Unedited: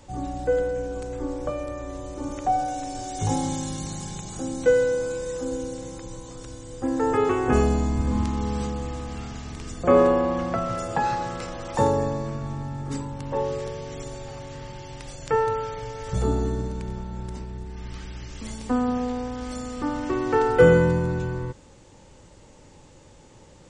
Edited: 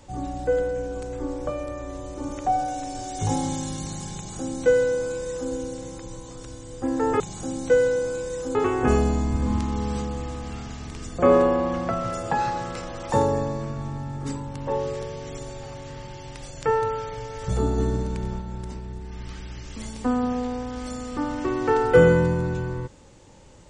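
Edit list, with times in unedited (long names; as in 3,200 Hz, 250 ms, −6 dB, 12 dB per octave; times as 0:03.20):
0:04.16–0:05.51: duplicate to 0:07.20
0:16.43–0:17.06: clip gain +3 dB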